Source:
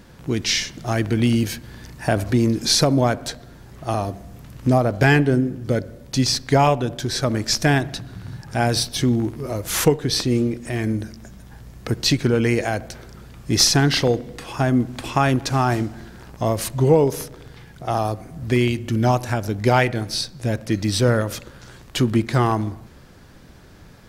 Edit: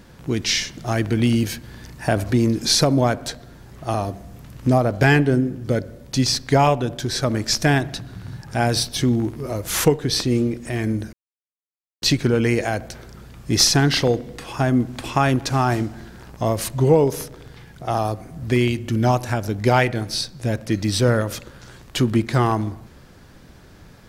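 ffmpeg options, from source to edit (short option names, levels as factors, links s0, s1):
-filter_complex "[0:a]asplit=3[s0][s1][s2];[s0]atrim=end=11.13,asetpts=PTS-STARTPTS,afade=t=out:st=11.126:d=0.004:c=hsin[s3];[s1]atrim=start=11.13:end=12.02,asetpts=PTS-STARTPTS,volume=0[s4];[s2]atrim=start=12.02,asetpts=PTS-STARTPTS,afade=t=in:d=0.004:c=hsin[s5];[s3][s4][s5]concat=n=3:v=0:a=1"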